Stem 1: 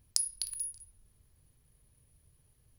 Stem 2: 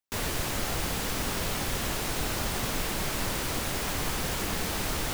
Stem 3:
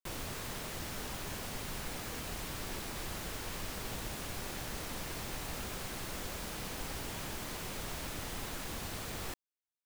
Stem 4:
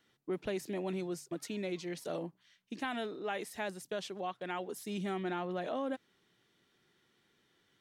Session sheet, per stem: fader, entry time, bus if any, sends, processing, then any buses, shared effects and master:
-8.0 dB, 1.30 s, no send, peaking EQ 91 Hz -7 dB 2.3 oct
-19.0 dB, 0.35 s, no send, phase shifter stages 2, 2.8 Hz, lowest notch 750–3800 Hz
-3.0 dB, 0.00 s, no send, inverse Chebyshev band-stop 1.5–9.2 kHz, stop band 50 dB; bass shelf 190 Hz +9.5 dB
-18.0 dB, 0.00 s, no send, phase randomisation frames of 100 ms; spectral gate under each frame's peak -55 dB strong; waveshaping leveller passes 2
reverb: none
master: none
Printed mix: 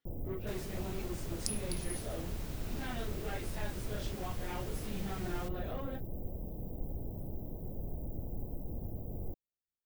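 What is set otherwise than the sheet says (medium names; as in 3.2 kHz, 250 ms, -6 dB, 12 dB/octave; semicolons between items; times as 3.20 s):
stem 2: missing phase shifter stages 2, 2.8 Hz, lowest notch 750–3800 Hz; stem 4 -18.0 dB -> -11.0 dB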